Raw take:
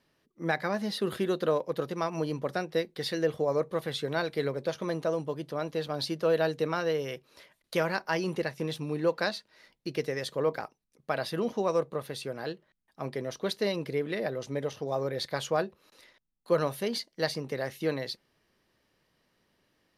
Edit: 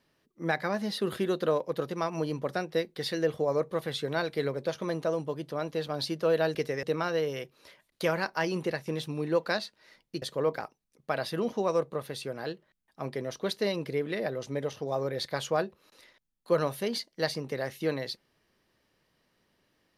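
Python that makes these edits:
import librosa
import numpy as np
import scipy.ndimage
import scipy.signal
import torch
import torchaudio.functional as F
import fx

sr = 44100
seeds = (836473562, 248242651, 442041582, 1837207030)

y = fx.edit(x, sr, fx.move(start_s=9.94, length_s=0.28, to_s=6.55), tone=tone)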